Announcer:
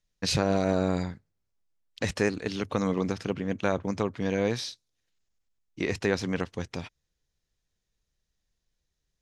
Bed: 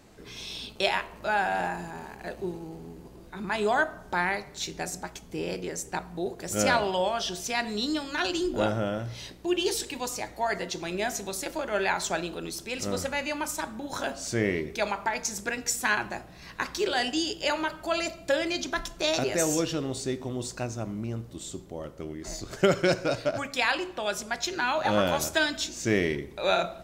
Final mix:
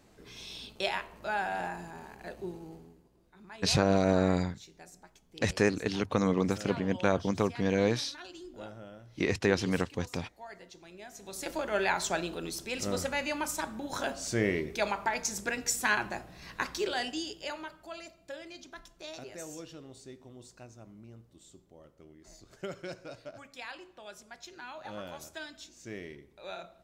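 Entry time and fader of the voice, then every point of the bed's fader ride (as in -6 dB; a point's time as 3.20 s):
3.40 s, 0.0 dB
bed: 2.73 s -6 dB
3.07 s -18.5 dB
11.09 s -18.5 dB
11.49 s -2 dB
16.60 s -2 dB
18.12 s -17.5 dB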